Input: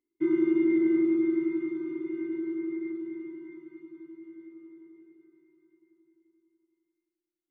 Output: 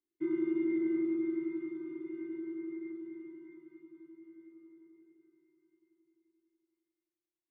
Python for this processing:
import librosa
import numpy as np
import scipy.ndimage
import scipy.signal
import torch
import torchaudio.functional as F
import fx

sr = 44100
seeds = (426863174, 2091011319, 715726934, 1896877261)

y = fx.air_absorb(x, sr, metres=62.0)
y = y * 10.0 ** (-7.5 / 20.0)